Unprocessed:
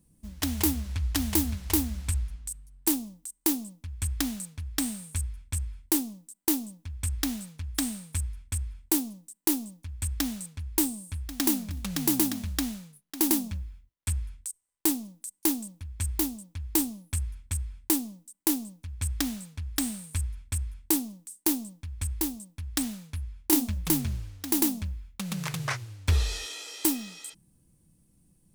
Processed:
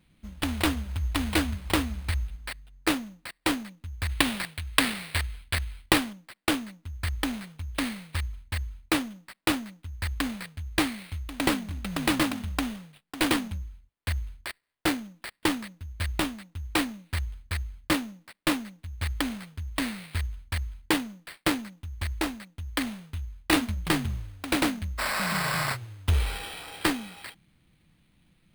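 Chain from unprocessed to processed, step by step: 4.09–6.13 s: peaking EQ 2.7 kHz +14.5 dB 2.8 oct; 25.01–25.65 s: spectral replace 510–9700 Hz after; sample-rate reducer 6.4 kHz, jitter 0%

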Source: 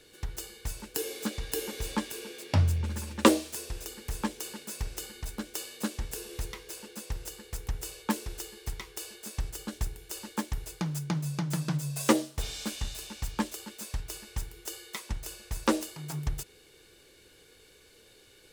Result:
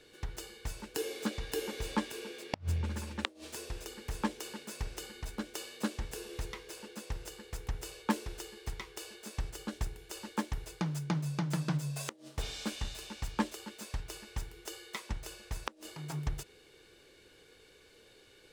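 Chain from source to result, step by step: low-pass 3.9 kHz 6 dB/octave; bass shelf 170 Hz -4 dB; inverted gate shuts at -15 dBFS, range -34 dB

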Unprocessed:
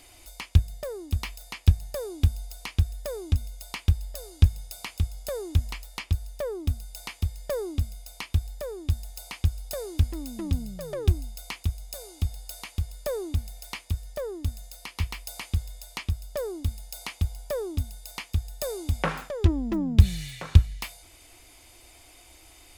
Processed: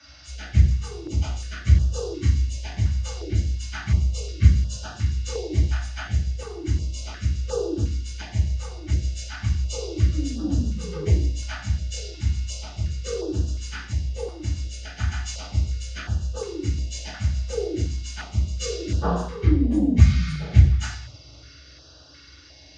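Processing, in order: frequency axis rescaled in octaves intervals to 81%; reverberation RT60 0.60 s, pre-delay 3 ms, DRR -8.5 dB; step-sequenced notch 2.8 Hz 420–2100 Hz; trim -6.5 dB

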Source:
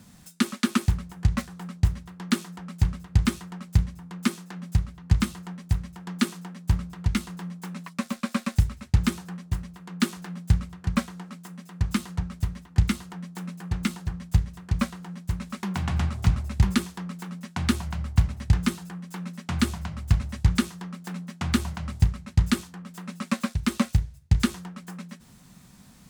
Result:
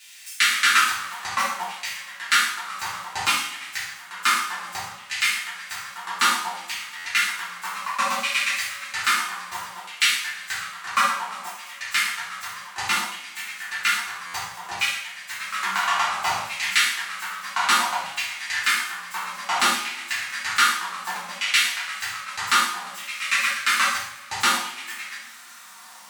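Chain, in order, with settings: LFO high-pass saw down 0.61 Hz 780–2600 Hz; reverberation, pre-delay 3 ms, DRR -9 dB; harmonic-percussive split percussive -6 dB; buffer glitch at 6.97/14.26 s, samples 512, times 6; trim +4.5 dB

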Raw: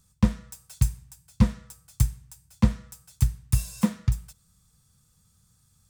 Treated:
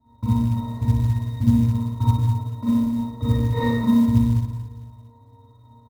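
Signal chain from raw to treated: in parallel at -5.5 dB: hard clipper -21.5 dBFS, distortion -5 dB; on the sum: sample-and-hold 18×; compression 8:1, threshold -21 dBFS, peak gain reduction 10.5 dB; peaking EQ 2.5 kHz -11.5 dB 0.97 oct; comb 3 ms, depth 98%; 0.62–1.42 s: added noise blue -42 dBFS; 2.02–2.69 s: high-pass 230 Hz 24 dB/octave; on a send: feedback delay 60 ms, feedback 22%, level -5 dB; 3.29–3.69 s: on the sum: integer overflow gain 21 dB; pitch-class resonator A#, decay 0.19 s; Schroeder reverb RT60 1.4 s, combs from 30 ms, DRR -9.5 dB; short-mantissa float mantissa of 4-bit; trim +8.5 dB

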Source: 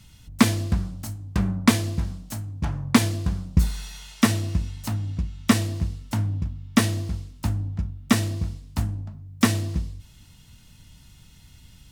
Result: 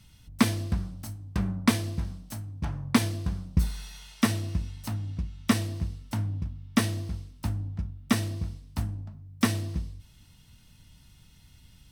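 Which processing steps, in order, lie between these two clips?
band-stop 7 kHz, Q 8.5; trim -5 dB

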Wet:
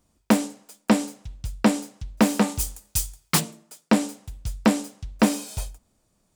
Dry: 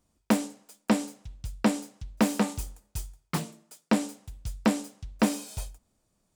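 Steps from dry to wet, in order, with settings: 2.59–3.39 s: treble shelf 2.9 kHz -> 2 kHz +12 dB; trim +5 dB

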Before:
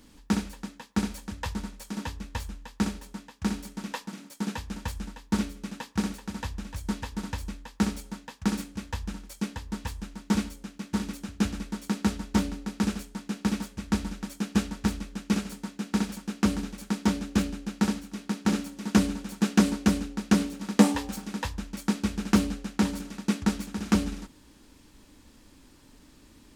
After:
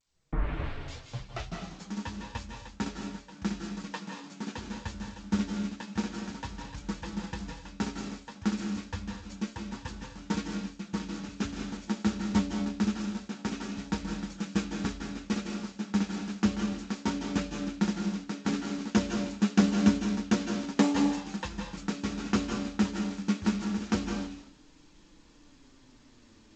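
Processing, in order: tape start-up on the opening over 1.87 s; flange 0.28 Hz, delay 5.6 ms, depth 4.6 ms, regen +32%; on a send at -4 dB: reverberation, pre-delay 151 ms; on the sum: G.722 64 kbps 16 kHz

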